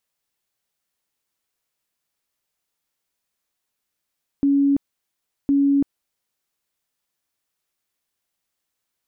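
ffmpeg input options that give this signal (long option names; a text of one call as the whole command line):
ffmpeg -f lavfi -i "aevalsrc='0.2*sin(2*PI*280*mod(t,1.06))*lt(mod(t,1.06),94/280)':duration=2.12:sample_rate=44100" out.wav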